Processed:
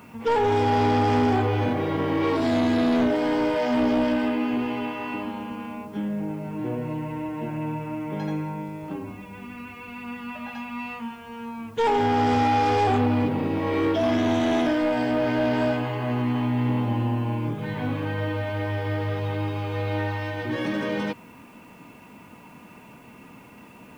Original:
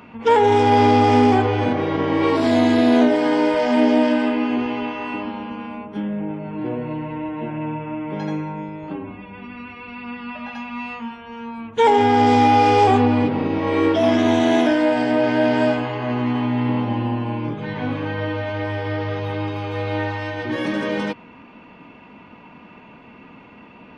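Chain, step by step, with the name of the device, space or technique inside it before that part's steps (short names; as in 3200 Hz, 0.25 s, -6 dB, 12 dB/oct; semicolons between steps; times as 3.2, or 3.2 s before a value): open-reel tape (soft clip -13 dBFS, distortion -13 dB; bell 120 Hz +4.5 dB 0.89 oct; white noise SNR 38 dB); gain -3.5 dB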